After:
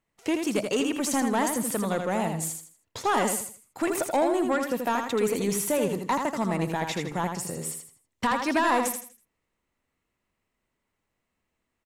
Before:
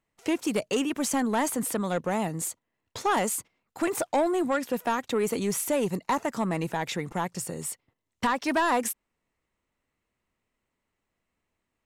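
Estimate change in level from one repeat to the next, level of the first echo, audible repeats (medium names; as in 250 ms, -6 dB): -10.0 dB, -5.5 dB, 3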